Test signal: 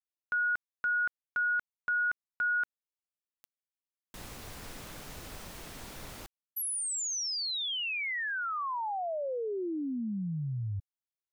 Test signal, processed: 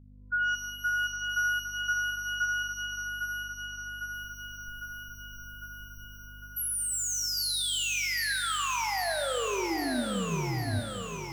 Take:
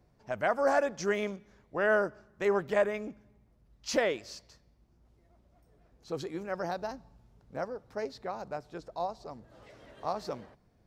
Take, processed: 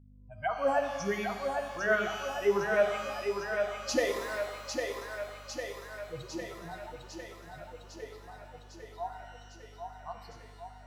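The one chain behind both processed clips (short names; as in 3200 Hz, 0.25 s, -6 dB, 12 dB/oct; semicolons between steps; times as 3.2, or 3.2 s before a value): per-bin expansion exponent 3; hum 50 Hz, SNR 19 dB; on a send: thinning echo 0.803 s, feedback 68%, high-pass 280 Hz, level -4.5 dB; on the sum: shimmer reverb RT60 1.4 s, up +12 st, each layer -8 dB, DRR 5.5 dB; gain +3 dB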